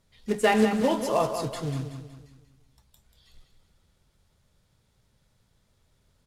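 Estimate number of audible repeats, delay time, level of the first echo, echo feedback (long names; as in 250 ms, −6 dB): 4, 187 ms, −8.5 dB, 42%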